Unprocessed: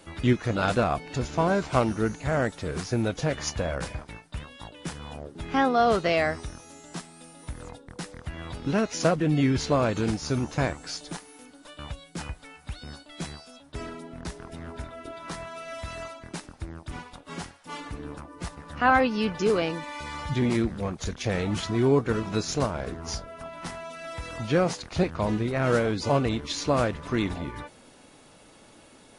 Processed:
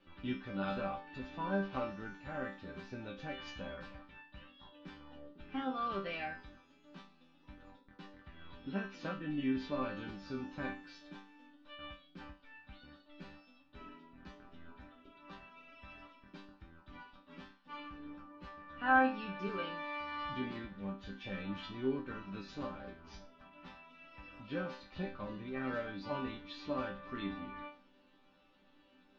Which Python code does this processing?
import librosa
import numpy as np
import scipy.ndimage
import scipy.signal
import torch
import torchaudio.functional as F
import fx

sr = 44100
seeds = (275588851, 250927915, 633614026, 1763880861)

y = scipy.signal.sosfilt(scipy.signal.butter(4, 3600.0, 'lowpass', fs=sr, output='sos'), x)
y = fx.peak_eq(y, sr, hz=630.0, db=-5.5, octaves=1.1)
y = fx.notch(y, sr, hz=2100.0, q=13.0)
y = fx.resonator_bank(y, sr, root=55, chord='sus4', decay_s=0.35)
y = y * librosa.db_to_amplitude(5.5)